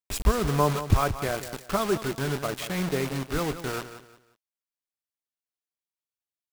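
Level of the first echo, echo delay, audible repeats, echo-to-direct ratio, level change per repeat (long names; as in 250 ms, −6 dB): −12.0 dB, 178 ms, 3, −11.5 dB, −10.5 dB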